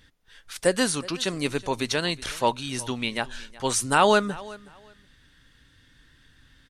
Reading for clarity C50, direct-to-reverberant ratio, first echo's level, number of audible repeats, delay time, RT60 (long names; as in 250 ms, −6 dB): no reverb audible, no reverb audible, −20.5 dB, 2, 370 ms, no reverb audible